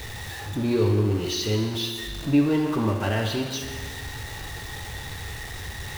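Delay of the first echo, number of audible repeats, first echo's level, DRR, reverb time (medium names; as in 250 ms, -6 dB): no echo, no echo, no echo, 2.0 dB, 1.7 s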